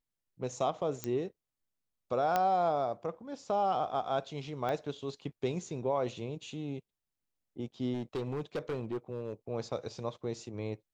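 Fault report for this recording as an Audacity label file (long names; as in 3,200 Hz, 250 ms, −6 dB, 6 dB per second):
1.040000	1.040000	click −18 dBFS
2.360000	2.360000	click −15 dBFS
4.690000	4.690000	click −23 dBFS
7.940000	9.330000	clipping −31 dBFS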